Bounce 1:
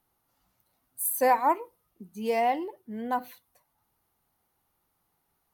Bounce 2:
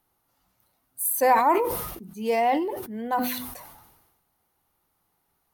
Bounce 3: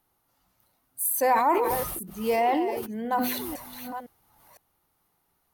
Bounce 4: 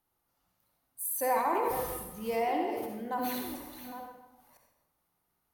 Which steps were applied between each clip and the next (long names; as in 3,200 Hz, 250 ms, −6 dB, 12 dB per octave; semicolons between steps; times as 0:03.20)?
mains-hum notches 50/100/150/200/250 Hz; level that may fall only so fast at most 47 dB per second; level +2.5 dB
delay that plays each chunk backwards 508 ms, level −11 dB; in parallel at +3 dB: brickwall limiter −17 dBFS, peak gain reduction 7.5 dB; on the sum: level −7.5 dB
convolution reverb RT60 1.0 s, pre-delay 46 ms, DRR 2 dB; level −8.5 dB